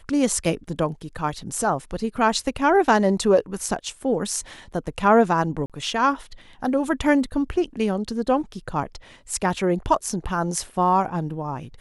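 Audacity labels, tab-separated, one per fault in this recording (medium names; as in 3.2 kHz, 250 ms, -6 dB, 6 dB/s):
5.660000	5.700000	dropout 37 ms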